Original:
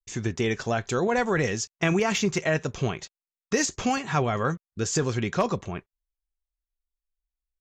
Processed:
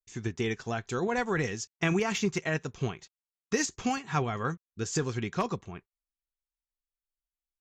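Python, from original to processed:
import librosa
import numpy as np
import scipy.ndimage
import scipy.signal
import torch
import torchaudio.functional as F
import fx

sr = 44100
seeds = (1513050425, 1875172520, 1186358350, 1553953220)

y = fx.peak_eq(x, sr, hz=580.0, db=-8.5, octaves=0.29)
y = fx.upward_expand(y, sr, threshold_db=-38.0, expansion=1.5)
y = y * librosa.db_to_amplitude(-2.5)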